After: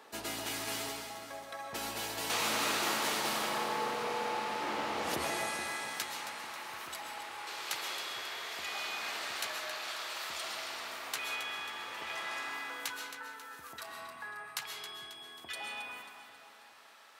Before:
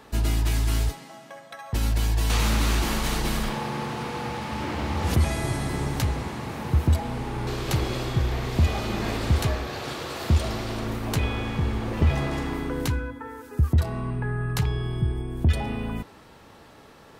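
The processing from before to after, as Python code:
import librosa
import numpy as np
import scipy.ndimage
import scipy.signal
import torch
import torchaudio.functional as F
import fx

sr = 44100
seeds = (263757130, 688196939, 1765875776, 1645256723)

y = fx.highpass(x, sr, hz=fx.steps((0.0, 430.0), (5.31, 1200.0)), slope=12)
y = fx.echo_split(y, sr, split_hz=820.0, low_ms=425, high_ms=270, feedback_pct=52, wet_db=-10.5)
y = fx.rev_freeverb(y, sr, rt60_s=0.97, hf_ratio=0.65, predelay_ms=90, drr_db=3.0)
y = F.gain(torch.from_numpy(y), -4.5).numpy()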